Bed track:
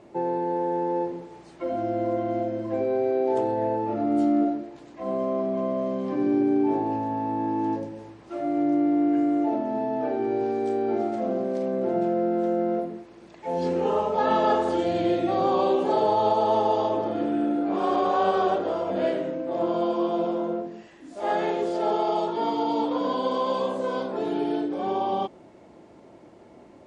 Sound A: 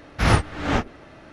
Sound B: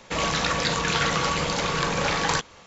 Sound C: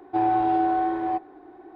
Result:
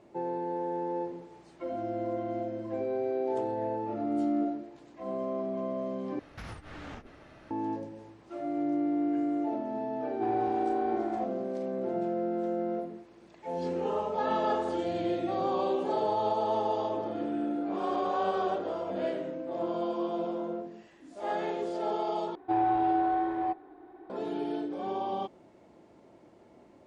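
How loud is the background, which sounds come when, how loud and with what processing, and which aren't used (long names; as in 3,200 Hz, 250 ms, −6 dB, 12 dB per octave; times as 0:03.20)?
bed track −7 dB
0:06.19: overwrite with A −7.5 dB + downward compressor 8 to 1, threshold −32 dBFS
0:10.07: mix in C −9.5 dB
0:22.35: overwrite with C −4.5 dB
not used: B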